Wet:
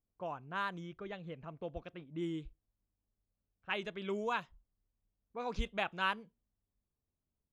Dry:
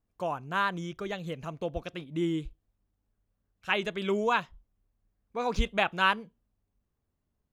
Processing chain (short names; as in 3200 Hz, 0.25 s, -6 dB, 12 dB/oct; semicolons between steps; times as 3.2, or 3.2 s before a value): low-pass opened by the level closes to 1100 Hz, open at -23 dBFS; gain -9 dB